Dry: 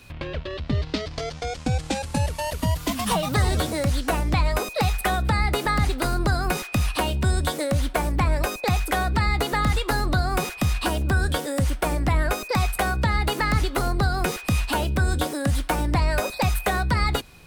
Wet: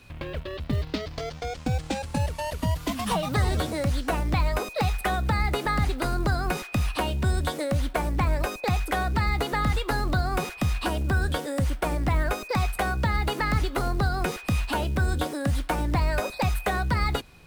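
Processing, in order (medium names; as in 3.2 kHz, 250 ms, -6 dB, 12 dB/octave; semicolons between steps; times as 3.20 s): treble shelf 4.8 kHz -5.5 dB; short-mantissa float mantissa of 4-bit; trim -2.5 dB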